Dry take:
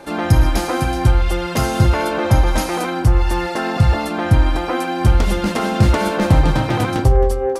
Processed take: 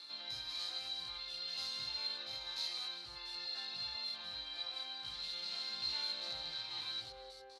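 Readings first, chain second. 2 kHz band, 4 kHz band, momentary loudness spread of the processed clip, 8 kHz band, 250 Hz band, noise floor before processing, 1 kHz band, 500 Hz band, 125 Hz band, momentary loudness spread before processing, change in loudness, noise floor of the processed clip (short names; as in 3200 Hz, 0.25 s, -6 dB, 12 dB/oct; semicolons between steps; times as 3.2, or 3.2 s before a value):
-25.0 dB, -6.5 dB, 5 LU, -24.0 dB, under -40 dB, -24 dBFS, -32.5 dB, -37.5 dB, under -40 dB, 5 LU, -22.5 dB, -52 dBFS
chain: stepped spectrum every 0.1 s; reverse; upward compressor, threshold -21 dBFS; reverse; chorus voices 6, 0.29 Hz, delay 18 ms, depth 1 ms; band-pass 4100 Hz, Q 15; on a send: echo 0.32 s -17.5 dB; on the sum: gain +7 dB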